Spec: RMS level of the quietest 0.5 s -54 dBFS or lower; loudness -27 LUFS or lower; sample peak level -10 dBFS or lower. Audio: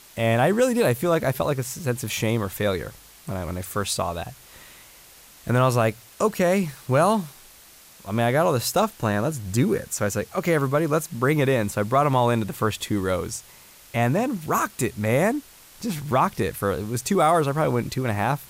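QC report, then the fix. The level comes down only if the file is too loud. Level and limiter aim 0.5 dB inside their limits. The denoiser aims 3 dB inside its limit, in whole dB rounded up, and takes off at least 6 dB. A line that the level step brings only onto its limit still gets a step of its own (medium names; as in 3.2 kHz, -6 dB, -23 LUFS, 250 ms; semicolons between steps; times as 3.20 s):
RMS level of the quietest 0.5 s -49 dBFS: fail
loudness -23.5 LUFS: fail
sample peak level -8.0 dBFS: fail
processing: noise reduction 6 dB, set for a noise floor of -49 dBFS; trim -4 dB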